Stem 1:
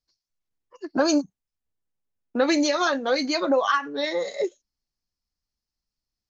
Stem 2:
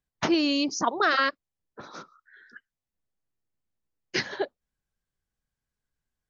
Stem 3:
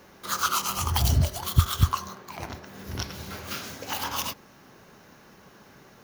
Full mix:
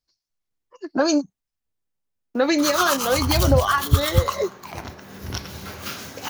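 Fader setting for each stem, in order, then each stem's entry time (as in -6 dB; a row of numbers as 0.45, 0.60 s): +1.5 dB, off, +2.5 dB; 0.00 s, off, 2.35 s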